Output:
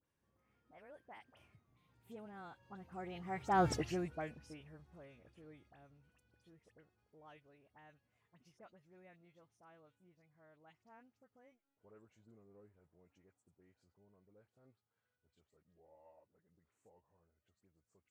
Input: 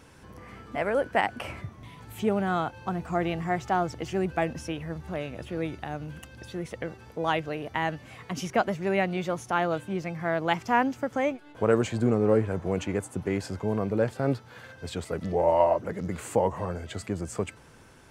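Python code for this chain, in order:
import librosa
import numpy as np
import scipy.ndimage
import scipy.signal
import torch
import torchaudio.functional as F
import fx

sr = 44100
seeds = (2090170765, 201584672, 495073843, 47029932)

y = fx.doppler_pass(x, sr, speed_mps=20, closest_m=1.1, pass_at_s=3.69)
y = fx.dispersion(y, sr, late='highs', ms=54.0, hz=2000.0)
y = y * librosa.db_to_amplitude(3.0)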